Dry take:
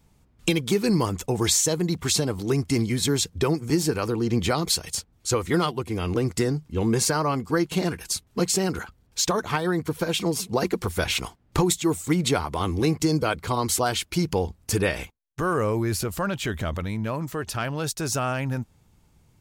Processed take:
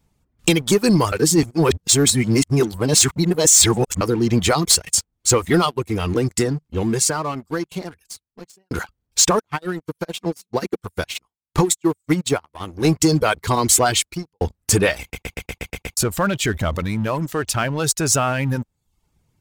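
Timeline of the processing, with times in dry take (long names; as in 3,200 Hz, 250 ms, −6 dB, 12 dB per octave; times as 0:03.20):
0:01.12–0:04.01: reverse
0:05.51–0:08.71: fade out
0:09.39–0:12.85: expander for the loud parts 2.5 to 1, over −35 dBFS
0:13.99–0:14.41: fade out quadratic
0:15.01: stutter in place 0.12 s, 8 plays
whole clip: reverb reduction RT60 0.66 s; dynamic equaliser 7,700 Hz, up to +7 dB, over −42 dBFS, Q 1.7; leveller curve on the samples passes 2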